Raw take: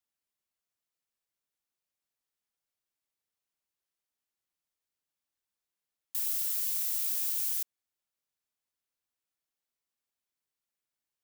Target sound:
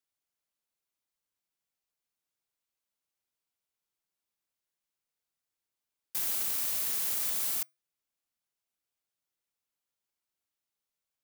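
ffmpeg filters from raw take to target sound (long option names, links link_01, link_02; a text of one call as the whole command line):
ffmpeg -i in.wav -af "afreqshift=140,aeval=exprs='val(0)*sgn(sin(2*PI*1800*n/s))':channel_layout=same" out.wav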